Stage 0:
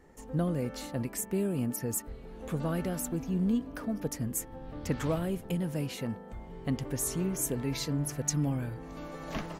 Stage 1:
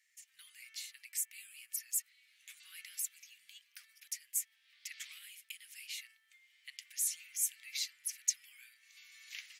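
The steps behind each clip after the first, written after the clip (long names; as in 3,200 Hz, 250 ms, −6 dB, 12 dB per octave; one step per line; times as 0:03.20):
elliptic high-pass filter 2,100 Hz, stop band 70 dB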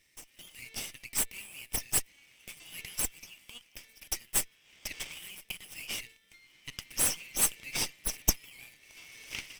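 lower of the sound and its delayed copy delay 0.37 ms
level +8.5 dB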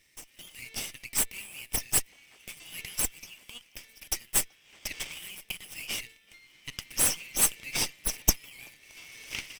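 far-end echo of a speakerphone 380 ms, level −26 dB
level +3 dB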